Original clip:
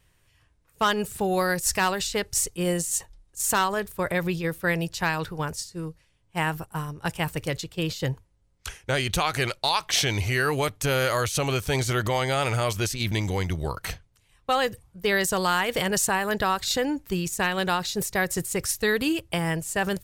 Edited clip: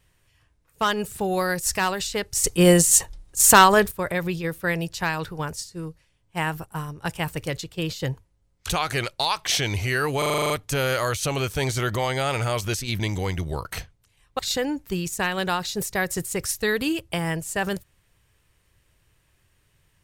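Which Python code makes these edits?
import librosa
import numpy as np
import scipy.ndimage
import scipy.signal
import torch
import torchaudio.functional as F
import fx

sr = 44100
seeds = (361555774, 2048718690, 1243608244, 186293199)

y = fx.edit(x, sr, fx.clip_gain(start_s=2.44, length_s=1.47, db=10.5),
    fx.cut(start_s=8.69, length_s=0.44),
    fx.stutter(start_s=10.62, slice_s=0.04, count=9),
    fx.cut(start_s=14.51, length_s=2.08), tone=tone)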